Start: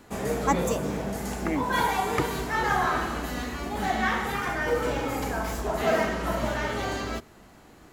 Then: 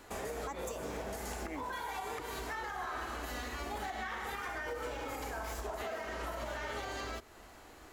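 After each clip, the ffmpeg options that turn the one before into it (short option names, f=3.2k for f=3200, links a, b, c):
-af "equalizer=f=170:t=o:w=1.3:g=-13.5,acompressor=threshold=-30dB:ratio=6,alimiter=level_in=6.5dB:limit=-24dB:level=0:latency=1:release=234,volume=-6.5dB"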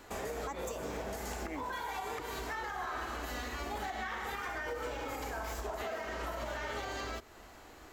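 -af "equalizer=f=9.9k:w=7.9:g=-14,volume=1dB"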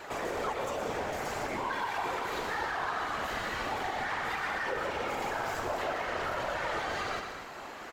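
-filter_complex "[0:a]asplit=2[a][b];[b]highpass=f=720:p=1,volume=18dB,asoftclip=type=tanh:threshold=-29dB[c];[a][c]amix=inputs=2:normalize=0,lowpass=f=2.3k:p=1,volume=-6dB,afftfilt=real='hypot(re,im)*cos(2*PI*random(0))':imag='hypot(re,im)*sin(2*PI*random(1))':win_size=512:overlap=0.75,aecho=1:1:119.5|180.8|236.2:0.355|0.251|0.316,volume=7.5dB"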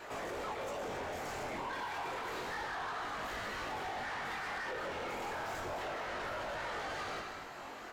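-af "flanger=delay=19:depth=4.9:speed=0.3,asoftclip=type=tanh:threshold=-35dB"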